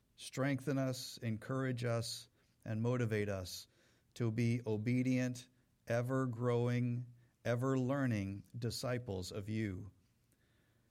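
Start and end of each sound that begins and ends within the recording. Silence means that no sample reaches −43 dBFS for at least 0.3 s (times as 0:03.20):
0:02.66–0:03.61
0:04.16–0:05.40
0:05.88–0:07.03
0:07.45–0:09.83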